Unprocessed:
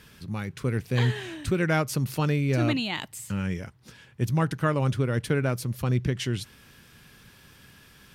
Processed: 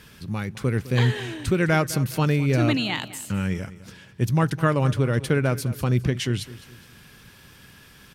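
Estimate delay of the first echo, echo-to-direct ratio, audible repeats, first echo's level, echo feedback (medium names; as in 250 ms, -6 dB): 208 ms, -16.5 dB, 3, -17.0 dB, 39%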